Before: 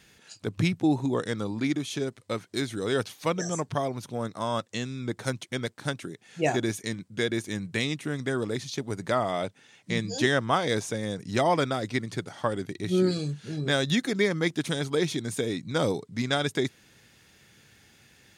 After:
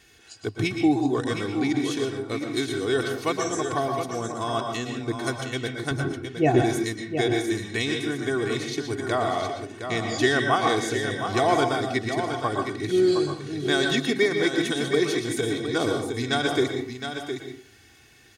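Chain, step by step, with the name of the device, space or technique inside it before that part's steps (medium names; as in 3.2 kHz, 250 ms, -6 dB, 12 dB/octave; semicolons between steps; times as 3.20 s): microphone above a desk (comb 2.7 ms, depth 67%; reverberation RT60 0.50 s, pre-delay 111 ms, DRR 3.5 dB); 5.91–6.62 s: RIAA curve playback; delay 714 ms -8 dB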